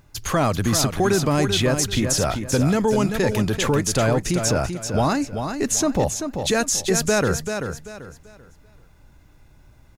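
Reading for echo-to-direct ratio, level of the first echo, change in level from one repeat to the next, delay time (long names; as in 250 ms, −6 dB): −6.5 dB, −7.0 dB, −11.0 dB, 388 ms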